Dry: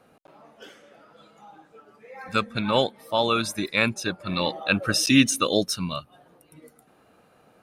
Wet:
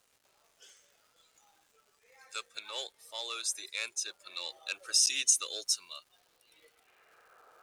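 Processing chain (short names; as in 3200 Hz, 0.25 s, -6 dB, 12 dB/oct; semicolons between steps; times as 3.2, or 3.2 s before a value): resonant low shelf 290 Hz -10 dB, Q 3; in parallel at -3.5 dB: soft clip -15.5 dBFS, distortion -12 dB; on the sum: band-pass sweep 7200 Hz -> 1300 Hz, 5.96–7.43; crackle 430/s -56 dBFS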